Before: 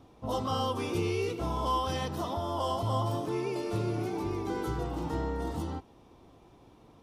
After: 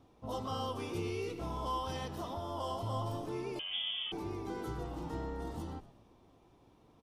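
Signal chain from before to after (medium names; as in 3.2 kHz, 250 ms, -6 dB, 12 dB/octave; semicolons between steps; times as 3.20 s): on a send: frequency-shifting echo 118 ms, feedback 48%, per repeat -99 Hz, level -16 dB; 3.59–4.12 s: on the sum: frequency inversion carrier 3.4 kHz; trim -7 dB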